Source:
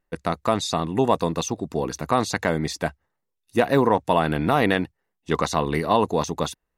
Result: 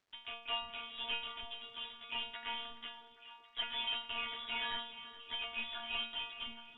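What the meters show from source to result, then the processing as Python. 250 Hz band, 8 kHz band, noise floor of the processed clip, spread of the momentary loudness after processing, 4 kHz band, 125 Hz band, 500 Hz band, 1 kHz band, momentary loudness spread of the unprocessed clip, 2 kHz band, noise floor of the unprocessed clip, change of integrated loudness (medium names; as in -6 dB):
-35.0 dB, under -40 dB, -61 dBFS, 10 LU, -3.5 dB, under -40 dB, -32.0 dB, -22.0 dB, 8 LU, -11.5 dB, -79 dBFS, -16.5 dB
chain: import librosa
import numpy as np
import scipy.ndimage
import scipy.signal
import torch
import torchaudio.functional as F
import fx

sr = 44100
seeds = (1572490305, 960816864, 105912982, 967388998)

p1 = fx.block_float(x, sr, bits=3)
p2 = scipy.signal.sosfilt(scipy.signal.butter(2, 84.0, 'highpass', fs=sr, output='sos'), p1)
p3 = p2 + 0.7 * np.pad(p2, (int(3.4 * sr / 1000.0), 0))[:len(p2)]
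p4 = p3 + fx.echo_single(p3, sr, ms=419, db=-16.5, dry=0)
p5 = fx.freq_invert(p4, sr, carrier_hz=3600)
p6 = fx.stiff_resonator(p5, sr, f0_hz=230.0, decay_s=0.57, stiffness=0.002)
p7 = fx.echo_stepped(p6, sr, ms=275, hz=160.0, octaves=1.4, feedback_pct=70, wet_db=-7)
p8 = fx.dmg_crackle(p7, sr, seeds[0], per_s=480.0, level_db=-65.0)
p9 = fx.air_absorb(p8, sr, metres=92.0)
y = p9 * librosa.db_to_amplitude(1.5)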